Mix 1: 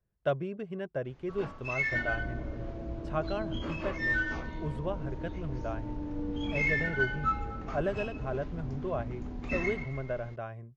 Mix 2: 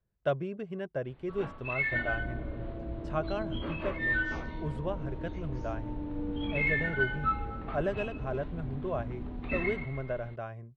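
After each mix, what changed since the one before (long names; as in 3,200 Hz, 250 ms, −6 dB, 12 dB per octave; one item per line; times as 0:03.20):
first sound: add Butterworth low-pass 4,200 Hz 72 dB per octave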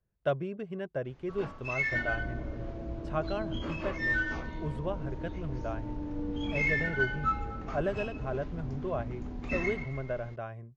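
first sound: remove Butterworth low-pass 4,200 Hz 72 dB per octave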